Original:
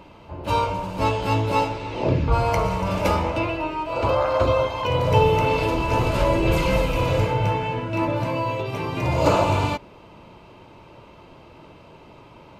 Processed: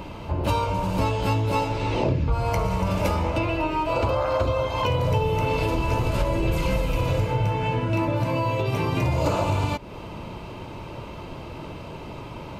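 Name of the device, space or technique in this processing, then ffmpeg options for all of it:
ASMR close-microphone chain: -af "lowshelf=frequency=190:gain=6.5,acompressor=threshold=-29dB:ratio=5,highshelf=frequency=6800:gain=6,volume=7.5dB"

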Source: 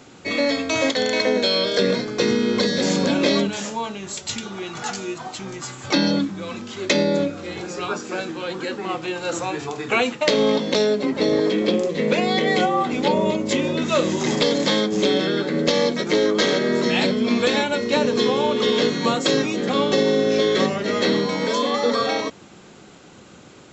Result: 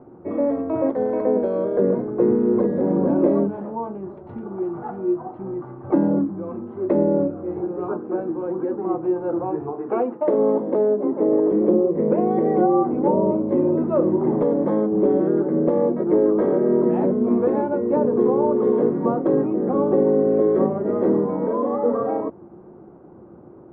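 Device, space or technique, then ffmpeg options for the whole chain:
under water: -filter_complex "[0:a]asettb=1/sr,asplit=3[link_01][link_02][link_03];[link_01]atrim=end=9.734[link_04];[link_02]atrim=start=9.73:end=11.52,asetpts=PTS-STARTPTS,afade=type=in:duration=0.004:curve=qsin,afade=type=out:start_time=1.786:duration=0.004:curve=qsin,highpass=230[link_05];[link_03]atrim=start=11.516[link_06];[link_04][link_05]acrossfade=duration=0.004:curve1=hsin:curve2=qsin[link_07];[link_07][link_06]acrossfade=duration=0.004:curve1=qsin:curve2=hsin,lowpass=frequency=990:width=0.5412,lowpass=frequency=990:width=1.3066,equalizer=frequency=350:width_type=o:width=0.21:gain=10"

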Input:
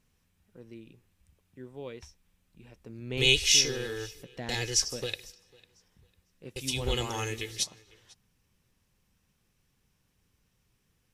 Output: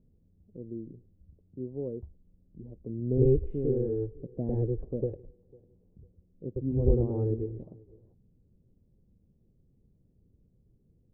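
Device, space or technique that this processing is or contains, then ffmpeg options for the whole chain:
under water: -af "lowpass=frequency=450:width=0.5412,lowpass=frequency=450:width=1.3066,equalizer=frequency=630:width_type=o:width=0.24:gain=4,volume=8.5dB"

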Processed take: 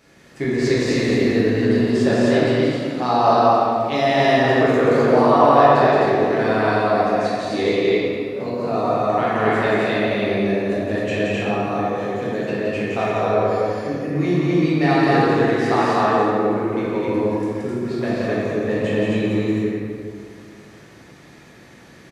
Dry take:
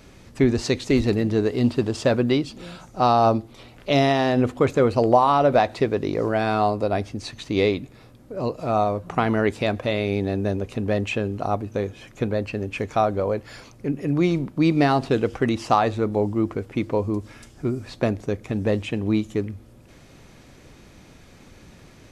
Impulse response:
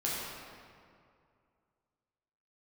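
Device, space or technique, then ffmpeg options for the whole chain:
stadium PA: -filter_complex "[0:a]asettb=1/sr,asplit=3[link_01][link_02][link_03];[link_01]atrim=end=15.814[link_04];[link_02]atrim=start=15.81:end=17,asetpts=PTS-STARTPTS,afade=type=in:duration=0.004:curve=qsin,afade=type=out:start_time=1.186:duration=0.004:curve=qsin,highpass=110[link_05];[link_03]atrim=start=16.996[link_06];[link_04][link_05]acrossfade=duration=0.004:curve1=hsin:curve2=qsin[link_07];[link_07][link_06]acrossfade=duration=0.004:curve1=qsin:curve2=hsin,highpass=frequency=180:poles=1,equalizer=frequency=1800:width_type=o:width=0.21:gain=7.5,aecho=1:1:174.9|259.5:0.708|0.891[link_08];[1:a]atrim=start_sample=2205[link_09];[link_08][link_09]afir=irnorm=-1:irlink=0,volume=-5.5dB"

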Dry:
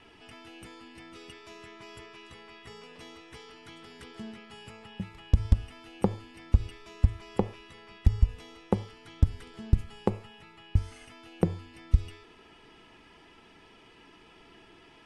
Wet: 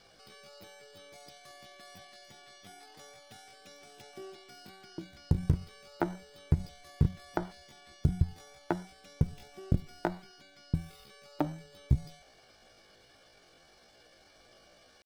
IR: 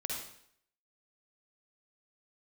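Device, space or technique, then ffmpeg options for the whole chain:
chipmunk voice: -af "asetrate=76340,aresample=44100,atempo=0.577676,volume=-4.5dB"

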